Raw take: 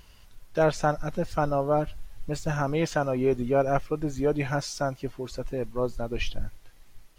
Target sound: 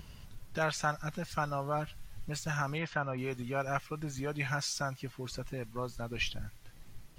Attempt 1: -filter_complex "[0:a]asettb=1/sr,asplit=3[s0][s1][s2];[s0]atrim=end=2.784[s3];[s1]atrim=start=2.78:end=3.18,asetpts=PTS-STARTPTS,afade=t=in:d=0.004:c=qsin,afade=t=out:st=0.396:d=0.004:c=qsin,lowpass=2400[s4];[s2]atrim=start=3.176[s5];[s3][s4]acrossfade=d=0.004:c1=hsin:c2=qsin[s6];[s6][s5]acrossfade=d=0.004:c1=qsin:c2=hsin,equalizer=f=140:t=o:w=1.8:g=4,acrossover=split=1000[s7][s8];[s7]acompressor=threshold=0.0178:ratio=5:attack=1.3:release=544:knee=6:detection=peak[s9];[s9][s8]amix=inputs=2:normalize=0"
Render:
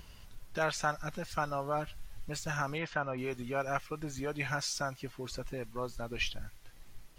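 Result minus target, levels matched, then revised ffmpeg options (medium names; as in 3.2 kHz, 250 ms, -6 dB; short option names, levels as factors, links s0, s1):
125 Hz band -3.5 dB
-filter_complex "[0:a]asettb=1/sr,asplit=3[s0][s1][s2];[s0]atrim=end=2.784[s3];[s1]atrim=start=2.78:end=3.18,asetpts=PTS-STARTPTS,afade=t=in:d=0.004:c=qsin,afade=t=out:st=0.396:d=0.004:c=qsin,lowpass=2400[s4];[s2]atrim=start=3.176[s5];[s3][s4]acrossfade=d=0.004:c1=hsin:c2=qsin[s6];[s6][s5]acrossfade=d=0.004:c1=qsin:c2=hsin,equalizer=f=140:t=o:w=1.8:g=12,acrossover=split=1000[s7][s8];[s7]acompressor=threshold=0.0178:ratio=5:attack=1.3:release=544:knee=6:detection=peak[s9];[s9][s8]amix=inputs=2:normalize=0"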